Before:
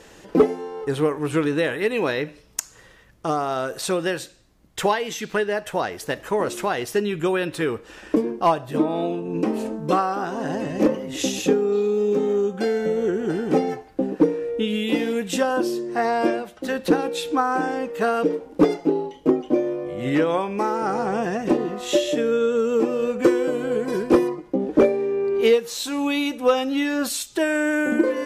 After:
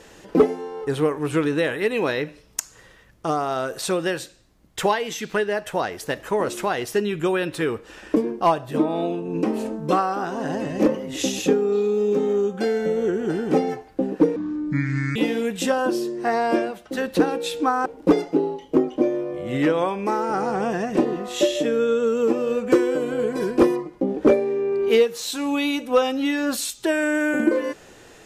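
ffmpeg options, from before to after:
-filter_complex "[0:a]asplit=4[s0][s1][s2][s3];[s0]atrim=end=14.364[s4];[s1]atrim=start=14.36:end=14.87,asetpts=PTS-STARTPTS,asetrate=28224,aresample=44100,atrim=end_sample=35142,asetpts=PTS-STARTPTS[s5];[s2]atrim=start=14.866:end=17.572[s6];[s3]atrim=start=18.378[s7];[s4][s5]acrossfade=d=0.004:c1=hsin:c2=hsin[s8];[s8][s6]acrossfade=d=0.004:c1=hsin:c2=hsin[s9];[s9][s7]acrossfade=d=0.004:c1=hsin:c2=hsin"

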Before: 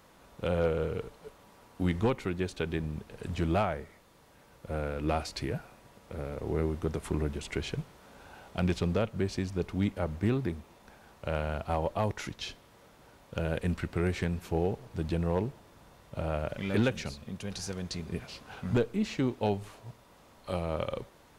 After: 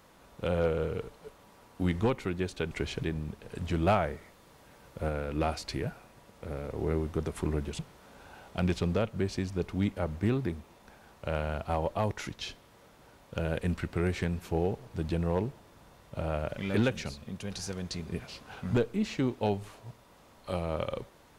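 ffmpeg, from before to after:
-filter_complex "[0:a]asplit=6[s0][s1][s2][s3][s4][s5];[s0]atrim=end=2.712[s6];[s1]atrim=start=7.468:end=7.792[s7];[s2]atrim=start=2.708:end=3.552[s8];[s3]atrim=start=3.548:end=4.772,asetpts=PTS-STARTPTS,volume=1.41[s9];[s4]atrim=start=4.768:end=7.472[s10];[s5]atrim=start=7.788[s11];[s6][s7]acrossfade=d=0.004:c1=hsin:c2=hsin[s12];[s12][s8]acrossfade=d=0.004:c1=hsin:c2=hsin[s13];[s13][s9]acrossfade=d=0.004:c1=hsin:c2=hsin[s14];[s14][s10]acrossfade=d=0.004:c1=hsin:c2=hsin[s15];[s15][s11]acrossfade=d=0.004:c1=hsin:c2=hsin"

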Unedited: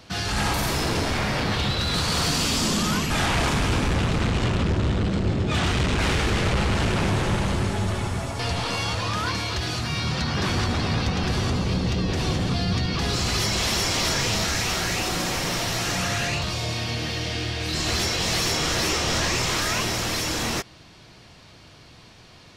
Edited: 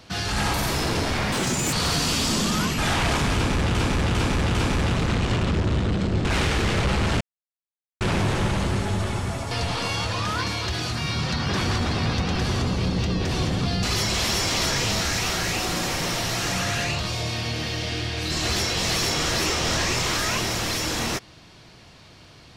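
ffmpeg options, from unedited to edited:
-filter_complex "[0:a]asplit=9[s0][s1][s2][s3][s4][s5][s6][s7][s8];[s0]atrim=end=1.324[s9];[s1]atrim=start=1.32:end=2.05,asetpts=PTS-STARTPTS,asetrate=78939,aresample=44100[s10];[s2]atrim=start=2.046:end=4.072[s11];[s3]atrim=start=3.668:end=4.072[s12];[s4]atrim=start=3.668:end=4.072[s13];[s5]atrim=start=3.668:end=5.372[s14];[s6]atrim=start=5.928:end=6.89,asetpts=PTS-STARTPTS,afade=t=out:st=0.958:d=0.004:c=hsin,apad=pad_dur=0.8[s15];[s7]atrim=start=6.89:end=12.712,asetpts=PTS-STARTPTS,afade=t=in:d=0.004:c=hsin[s16];[s8]atrim=start=13.258[s17];[s9][s10]acrossfade=d=0.004:c1=hsin:c2=hsin[s18];[s18][s11]acrossfade=d=0.004:c1=hsin:c2=hsin[s19];[s19][s12]acrossfade=d=0.004:c1=hsin:c2=hsin[s20];[s20][s13]acrossfade=d=0.004:c1=hsin:c2=hsin[s21];[s21][s14]acrossfade=d=0.004:c1=hsin:c2=hsin[s22];[s15][s16]concat=n=2:v=0:a=1[s23];[s22][s23]acrossfade=d=0.004:c1=hsin:c2=hsin[s24];[s24][s17]acrossfade=d=0.004:c1=hsin:c2=hsin"

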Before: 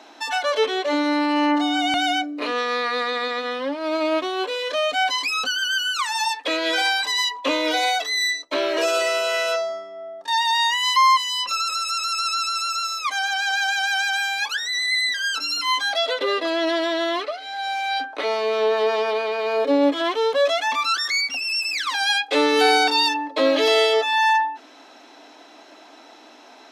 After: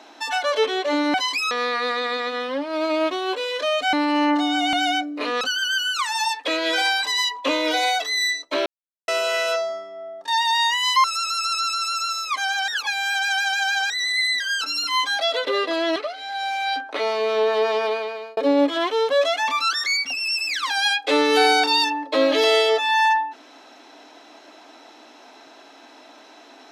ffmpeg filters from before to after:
-filter_complex "[0:a]asplit=12[s0][s1][s2][s3][s4][s5][s6][s7][s8][s9][s10][s11];[s0]atrim=end=1.142[s12];[s1]atrim=start=5.038:end=5.412[s13];[s2]atrim=start=2.618:end=5.042[s14];[s3]atrim=start=1.138:end=2.622[s15];[s4]atrim=start=5.408:end=8.66,asetpts=PTS-STARTPTS,afade=t=out:st=3.248:d=0.004:c=hsin[s16];[s5]atrim=start=8.66:end=9.08,asetpts=PTS-STARTPTS,volume=0[s17];[s6]atrim=start=9.08:end=11.042,asetpts=PTS-STARTPTS,afade=t=in:d=0.004:c=hsin[s18];[s7]atrim=start=11.778:end=13.422[s19];[s8]atrim=start=13.418:end=14.642,asetpts=PTS-STARTPTS,areverse[s20];[s9]atrim=start=14.638:end=16.702[s21];[s10]atrim=start=17.198:end=19.61,asetpts=PTS-STARTPTS,afade=t=out:st=1.942:d=0.47[s22];[s11]atrim=start=19.61,asetpts=PTS-STARTPTS,afade=t=in:d=0.004:c=hsin[s23];[s12][s13]acrossfade=d=0.004:c1=hsin:c2=hsin[s24];[s24][s14]acrossfade=d=0.004:c1=hsin:c2=hsin[s25];[s25][s15]acrossfade=d=0.004:c1=hsin:c2=hsin[s26];[s16][s17][s18]concat=n=3:v=0:a=1[s27];[s26][s27]acrossfade=d=0.004:c1=hsin:c2=hsin[s28];[s28][s19]acrossfade=d=0.004:c1=hsin:c2=hsin[s29];[s29][s20]acrossfade=d=0.004:c1=hsin:c2=hsin[s30];[s30][s21]acrossfade=d=0.004:c1=hsin:c2=hsin[s31];[s22][s23]concat=n=2:v=0:a=1[s32];[s31][s32]acrossfade=d=0.004:c1=hsin:c2=hsin"

